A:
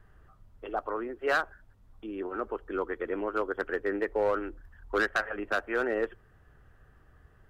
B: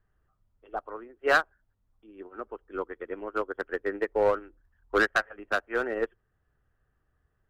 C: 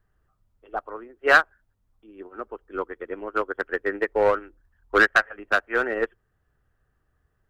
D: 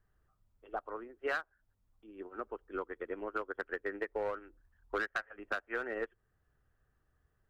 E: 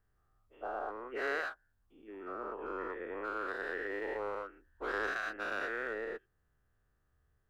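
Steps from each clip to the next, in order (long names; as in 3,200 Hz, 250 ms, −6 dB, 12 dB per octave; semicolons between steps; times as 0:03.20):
expander for the loud parts 2.5 to 1, over −38 dBFS; level +6 dB
dynamic equaliser 1,900 Hz, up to +5 dB, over −40 dBFS, Q 0.87; level +3 dB
downward compressor 5 to 1, threshold −29 dBFS, peak gain reduction 16 dB; level −5 dB
every bin's largest magnitude spread in time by 240 ms; level −7 dB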